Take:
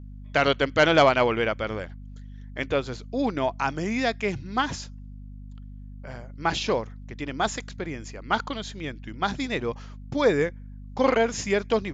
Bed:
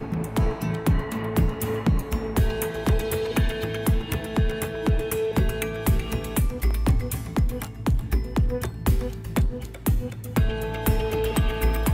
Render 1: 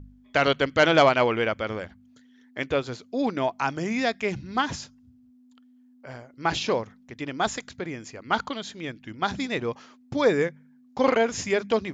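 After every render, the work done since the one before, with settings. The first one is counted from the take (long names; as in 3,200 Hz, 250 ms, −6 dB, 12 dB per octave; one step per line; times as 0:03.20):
hum removal 50 Hz, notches 4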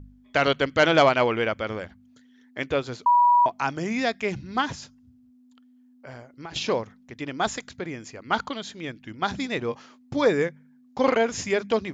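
0:03.06–0:03.46: beep over 970 Hz −14 dBFS
0:04.72–0:06.56: downward compressor, threshold −35 dBFS
0:09.67–0:10.27: double-tracking delay 21 ms −10 dB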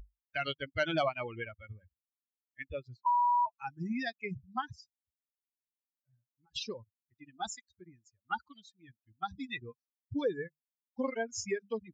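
spectral dynamics exaggerated over time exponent 3
downward compressor 2 to 1, threshold −34 dBFS, peak gain reduction 9.5 dB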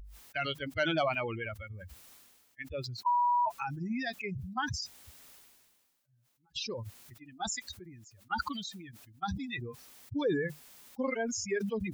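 level that may fall only so fast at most 34 dB per second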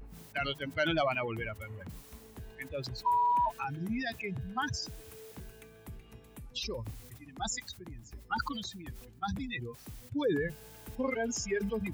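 mix in bed −25.5 dB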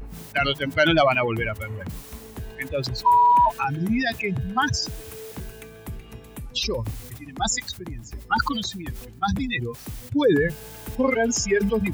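level +11.5 dB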